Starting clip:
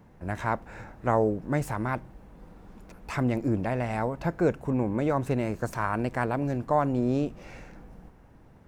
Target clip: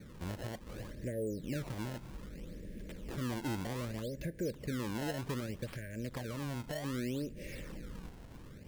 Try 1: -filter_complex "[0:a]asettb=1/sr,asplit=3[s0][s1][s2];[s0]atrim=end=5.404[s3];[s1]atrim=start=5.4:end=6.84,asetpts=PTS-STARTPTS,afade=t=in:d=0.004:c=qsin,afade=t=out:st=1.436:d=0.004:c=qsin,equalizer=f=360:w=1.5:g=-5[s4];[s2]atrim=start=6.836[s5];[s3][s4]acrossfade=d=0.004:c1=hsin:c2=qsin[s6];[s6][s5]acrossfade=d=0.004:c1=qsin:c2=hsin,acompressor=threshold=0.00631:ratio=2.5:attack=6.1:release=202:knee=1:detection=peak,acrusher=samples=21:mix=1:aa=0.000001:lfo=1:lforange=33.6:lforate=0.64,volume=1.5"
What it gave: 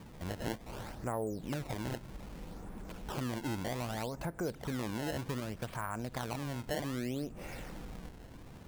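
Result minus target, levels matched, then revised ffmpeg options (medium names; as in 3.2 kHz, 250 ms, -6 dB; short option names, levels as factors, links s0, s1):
1 kHz band +5.0 dB
-filter_complex "[0:a]asettb=1/sr,asplit=3[s0][s1][s2];[s0]atrim=end=5.404[s3];[s1]atrim=start=5.4:end=6.84,asetpts=PTS-STARTPTS,afade=t=in:d=0.004:c=qsin,afade=t=out:st=1.436:d=0.004:c=qsin,equalizer=f=360:w=1.5:g=-5[s4];[s2]atrim=start=6.836[s5];[s3][s4]acrossfade=d=0.004:c1=hsin:c2=qsin[s6];[s6][s5]acrossfade=d=0.004:c1=qsin:c2=hsin,acompressor=threshold=0.00631:ratio=2.5:attack=6.1:release=202:knee=1:detection=peak,asuperstop=centerf=1000:order=20:qfactor=1,acrusher=samples=21:mix=1:aa=0.000001:lfo=1:lforange=33.6:lforate=0.64,volume=1.5"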